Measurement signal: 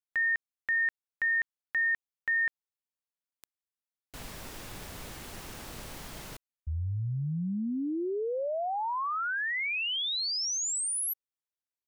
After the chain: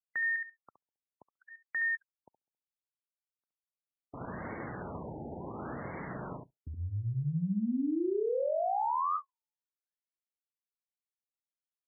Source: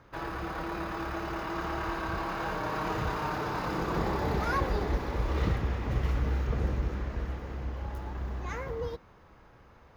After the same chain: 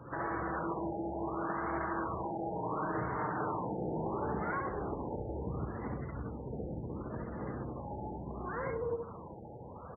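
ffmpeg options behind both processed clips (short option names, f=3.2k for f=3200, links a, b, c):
-filter_complex "[0:a]acompressor=threshold=-43dB:ratio=8:attack=0.94:release=96:knee=1:detection=rms,asplit=2[a][b];[b]aecho=0:1:69|138|207:0.668|0.147|0.0323[c];[a][c]amix=inputs=2:normalize=0,afftdn=nr=36:nf=-55,acontrast=56,highpass=110,afftfilt=real='re*lt(b*sr/1024,880*pow(2300/880,0.5+0.5*sin(2*PI*0.71*pts/sr)))':imag='im*lt(b*sr/1024,880*pow(2300/880,0.5+0.5*sin(2*PI*0.71*pts/sr)))':win_size=1024:overlap=0.75,volume=5.5dB"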